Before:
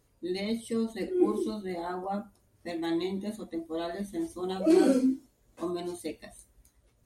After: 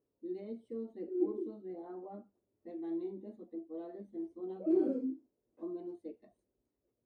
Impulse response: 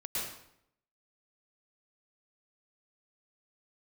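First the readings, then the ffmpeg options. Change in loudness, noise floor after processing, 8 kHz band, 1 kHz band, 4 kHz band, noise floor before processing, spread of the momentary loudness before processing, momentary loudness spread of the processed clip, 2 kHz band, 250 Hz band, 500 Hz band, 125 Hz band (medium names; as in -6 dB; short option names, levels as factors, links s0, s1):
-8.5 dB, -85 dBFS, under -35 dB, -17.0 dB, under -30 dB, -69 dBFS, 14 LU, 16 LU, under -25 dB, -9.0 dB, -8.0 dB, under -15 dB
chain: -af "bandpass=f=370:t=q:w=1.8:csg=0,volume=0.447"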